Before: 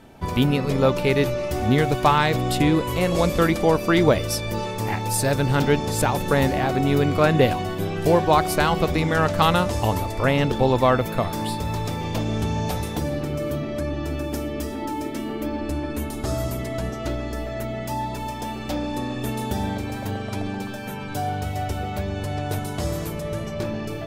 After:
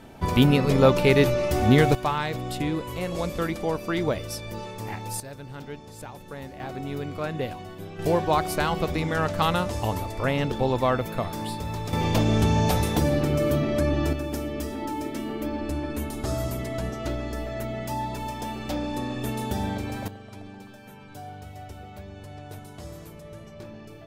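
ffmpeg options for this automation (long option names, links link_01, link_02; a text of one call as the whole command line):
ffmpeg -i in.wav -af "asetnsamples=nb_out_samples=441:pad=0,asendcmd='1.95 volume volume -8.5dB;5.2 volume volume -19dB;6.6 volume volume -12.5dB;7.99 volume volume -5dB;11.93 volume volume 3.5dB;14.13 volume volume -2.5dB;20.08 volume volume -14dB',volume=1.5dB" out.wav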